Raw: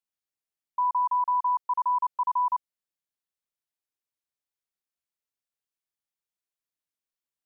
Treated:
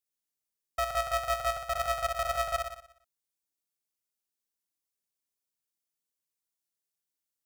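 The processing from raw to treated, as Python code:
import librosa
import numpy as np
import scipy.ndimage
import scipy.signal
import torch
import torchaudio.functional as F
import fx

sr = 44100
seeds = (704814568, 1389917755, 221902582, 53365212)

y = fx.bass_treble(x, sr, bass_db=9, treble_db=10)
y = fx.echo_feedback(y, sr, ms=60, feedback_pct=57, wet_db=-4.0)
y = fx.dynamic_eq(y, sr, hz=1100.0, q=2.4, threshold_db=-38.0, ratio=4.0, max_db=4)
y = y * np.sign(np.sin(2.0 * np.pi * 310.0 * np.arange(len(y)) / sr))
y = F.gain(torch.from_numpy(y), -7.0).numpy()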